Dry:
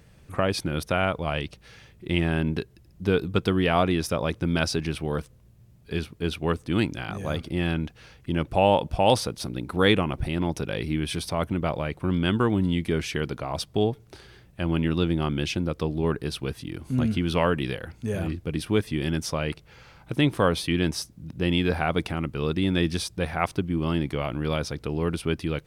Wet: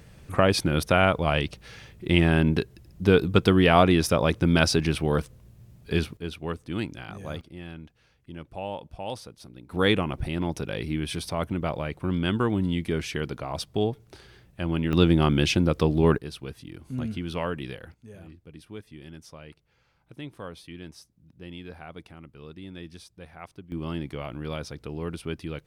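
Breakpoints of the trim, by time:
+4 dB
from 6.17 s -6.5 dB
from 7.41 s -14.5 dB
from 9.71 s -2 dB
from 14.93 s +5 dB
from 16.18 s -7 dB
from 17.94 s -17.5 dB
from 23.72 s -6.5 dB

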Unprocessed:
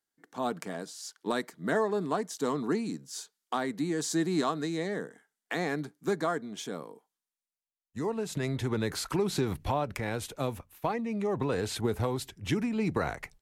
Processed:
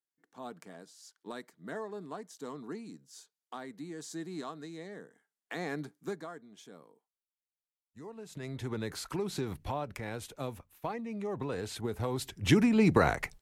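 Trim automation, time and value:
5.04 s -12 dB
5.94 s -2.5 dB
6.28 s -14.5 dB
8.12 s -14.5 dB
8.66 s -6 dB
11.95 s -6 dB
12.47 s +5.5 dB

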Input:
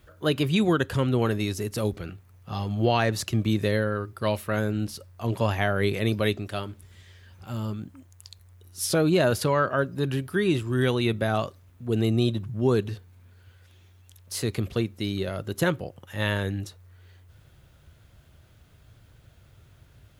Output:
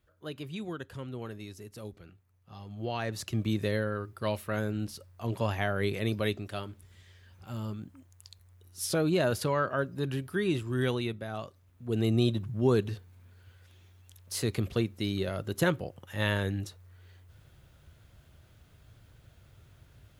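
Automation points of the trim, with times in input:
2.60 s -16 dB
3.40 s -5.5 dB
10.94 s -5.5 dB
11.24 s -13.5 dB
12.15 s -2.5 dB

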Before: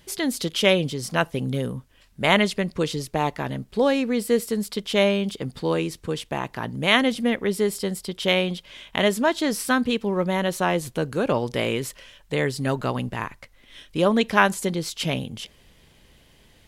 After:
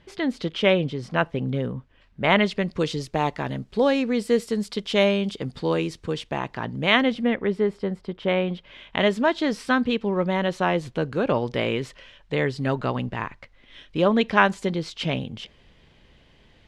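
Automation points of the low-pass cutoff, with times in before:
2.25 s 2.7 kHz
2.80 s 6.2 kHz
5.99 s 6.2 kHz
6.94 s 3.8 kHz
7.76 s 1.7 kHz
8.31 s 1.7 kHz
9.03 s 3.9 kHz

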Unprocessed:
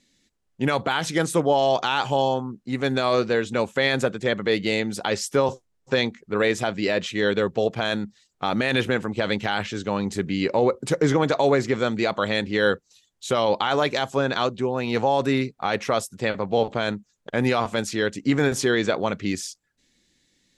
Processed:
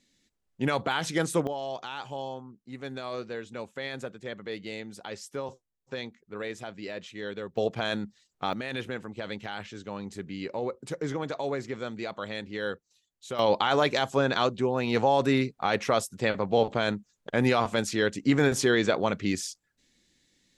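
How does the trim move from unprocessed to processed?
-4.5 dB
from 1.47 s -14.5 dB
from 7.57 s -5 dB
from 8.53 s -12 dB
from 13.39 s -2 dB

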